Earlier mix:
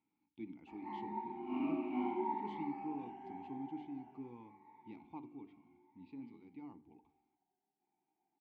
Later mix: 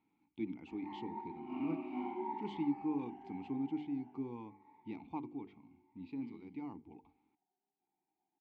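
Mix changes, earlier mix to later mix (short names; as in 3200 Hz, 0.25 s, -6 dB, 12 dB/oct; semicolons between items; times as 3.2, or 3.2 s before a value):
speech +9.0 dB; reverb: off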